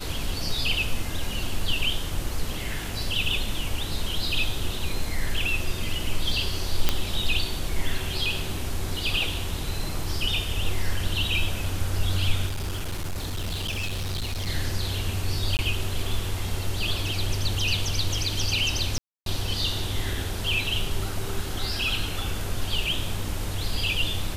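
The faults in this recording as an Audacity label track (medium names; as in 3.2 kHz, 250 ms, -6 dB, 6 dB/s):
6.890000	6.890000	pop -5 dBFS
12.460000	14.500000	clipped -25.5 dBFS
15.570000	15.590000	dropout 19 ms
18.980000	19.260000	dropout 282 ms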